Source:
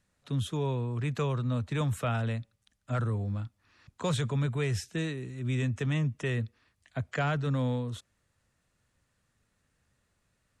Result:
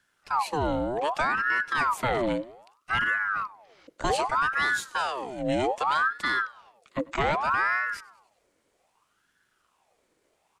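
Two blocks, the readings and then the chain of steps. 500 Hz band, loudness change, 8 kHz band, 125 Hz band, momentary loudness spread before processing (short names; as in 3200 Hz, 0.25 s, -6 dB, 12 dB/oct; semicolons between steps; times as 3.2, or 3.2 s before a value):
+5.0 dB, +5.0 dB, +3.5 dB, -12.5 dB, 8 LU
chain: feedback echo 97 ms, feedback 59%, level -23 dB; ring modulator with a swept carrier 1000 Hz, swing 60%, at 0.64 Hz; gain +6.5 dB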